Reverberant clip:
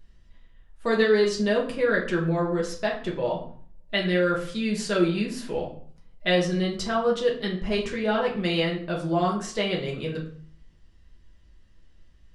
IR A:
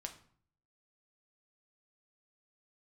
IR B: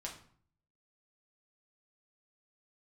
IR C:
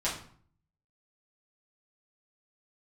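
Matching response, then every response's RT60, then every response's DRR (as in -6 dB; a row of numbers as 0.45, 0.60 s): B; 0.55, 0.55, 0.55 s; 3.5, -2.5, -9.0 dB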